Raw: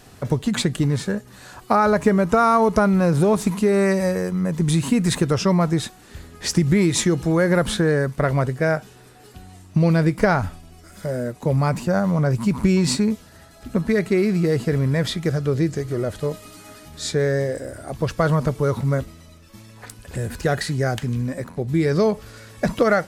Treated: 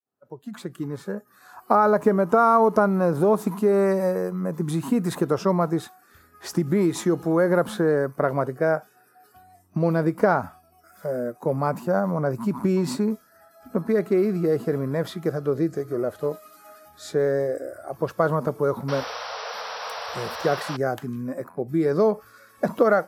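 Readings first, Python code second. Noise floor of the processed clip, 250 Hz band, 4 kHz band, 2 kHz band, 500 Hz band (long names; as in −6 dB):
−58 dBFS, −4.5 dB, −9.0 dB, −5.0 dB, −0.5 dB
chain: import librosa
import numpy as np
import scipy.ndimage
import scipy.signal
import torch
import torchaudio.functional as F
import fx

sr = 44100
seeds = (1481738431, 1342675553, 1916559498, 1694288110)

y = fx.fade_in_head(x, sr, length_s=1.61)
y = fx.noise_reduce_blind(y, sr, reduce_db=14)
y = fx.spec_paint(y, sr, seeds[0], shape='noise', start_s=18.88, length_s=1.89, low_hz=430.0, high_hz=5900.0, level_db=-27.0)
y = scipy.signal.sosfilt(scipy.signal.butter(2, 240.0, 'highpass', fs=sr, output='sos'), y)
y = fx.band_shelf(y, sr, hz=4200.0, db=-12.0, octaves=2.7)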